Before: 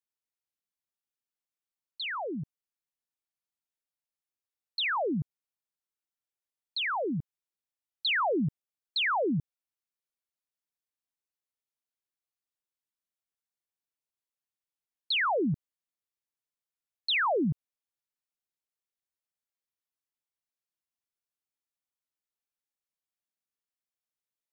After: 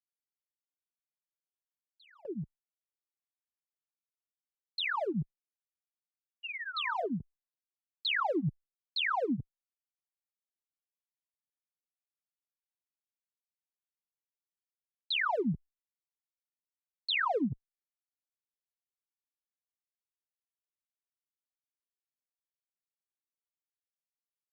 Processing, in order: Wiener smoothing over 25 samples; gate with hold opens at -33 dBFS; painted sound fall, 6.43–7.06, 630–2900 Hz -37 dBFS; wow and flutter 19 cents; endless flanger 3.1 ms -0.37 Hz

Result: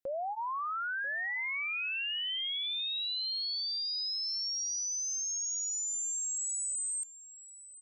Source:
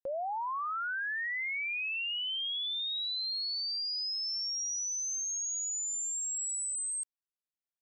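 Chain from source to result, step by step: notch 870 Hz, Q 12; limiter -34.5 dBFS, peak gain reduction 3 dB; echo 0.99 s -16.5 dB; gain +2.5 dB

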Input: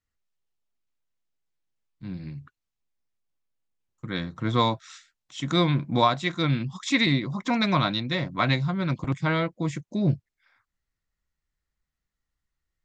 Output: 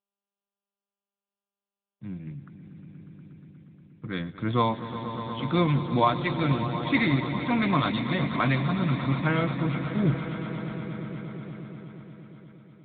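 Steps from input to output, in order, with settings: gate with hold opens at -50 dBFS; on a send: swelling echo 0.119 s, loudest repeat 5, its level -13 dB; on the sum: gain -1 dB; AMR-NB 10.2 kbps 8000 Hz

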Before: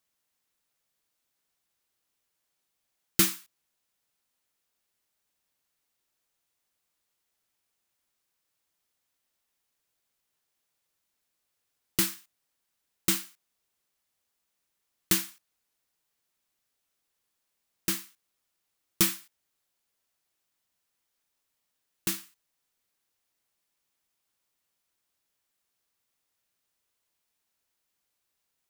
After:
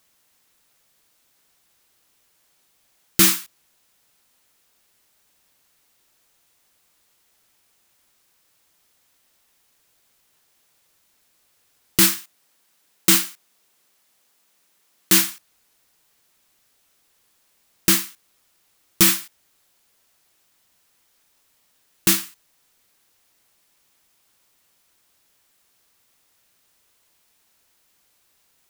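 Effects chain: 12.13–15.24 HPF 150 Hz 12 dB/oct; maximiser +17 dB; gain -1 dB

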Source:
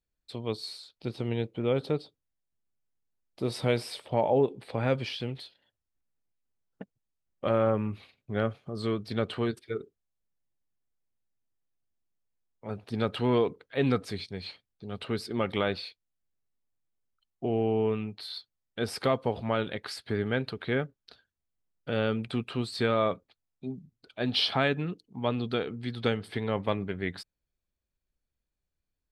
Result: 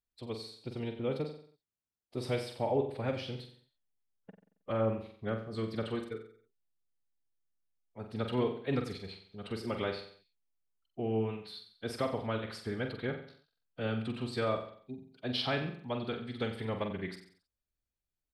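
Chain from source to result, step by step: feedback echo 72 ms, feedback 58%, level -7 dB; time stretch by phase-locked vocoder 0.63×; gain -6 dB

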